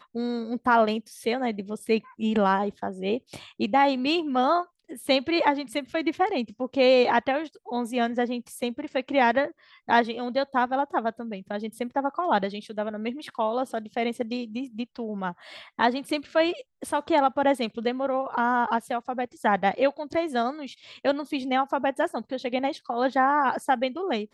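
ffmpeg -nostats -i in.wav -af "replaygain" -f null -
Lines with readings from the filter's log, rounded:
track_gain = +4.9 dB
track_peak = 0.286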